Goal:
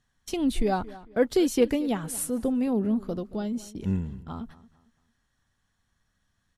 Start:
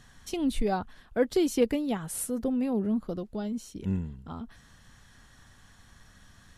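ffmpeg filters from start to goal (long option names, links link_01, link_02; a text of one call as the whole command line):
ffmpeg -i in.wav -filter_complex "[0:a]agate=range=-21dB:threshold=-45dB:ratio=16:detection=peak,asplit=2[link_01][link_02];[link_02]adelay=225,lowpass=frequency=4400:poles=1,volume=-18.5dB,asplit=2[link_03][link_04];[link_04]adelay=225,lowpass=frequency=4400:poles=1,volume=0.34,asplit=2[link_05][link_06];[link_06]adelay=225,lowpass=frequency=4400:poles=1,volume=0.34[link_07];[link_03][link_05][link_07]amix=inputs=3:normalize=0[link_08];[link_01][link_08]amix=inputs=2:normalize=0,volume=2.5dB" out.wav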